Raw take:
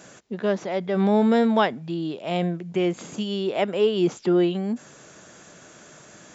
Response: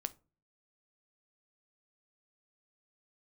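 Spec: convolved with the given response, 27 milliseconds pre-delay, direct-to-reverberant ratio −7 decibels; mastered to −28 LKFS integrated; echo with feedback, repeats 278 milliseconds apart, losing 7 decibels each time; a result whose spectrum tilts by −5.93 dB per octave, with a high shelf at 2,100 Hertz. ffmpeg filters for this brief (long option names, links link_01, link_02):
-filter_complex "[0:a]highshelf=frequency=2100:gain=-4.5,aecho=1:1:278|556|834|1112|1390:0.447|0.201|0.0905|0.0407|0.0183,asplit=2[link_01][link_02];[1:a]atrim=start_sample=2205,adelay=27[link_03];[link_02][link_03]afir=irnorm=-1:irlink=0,volume=8dB[link_04];[link_01][link_04]amix=inputs=2:normalize=0,volume=-13dB"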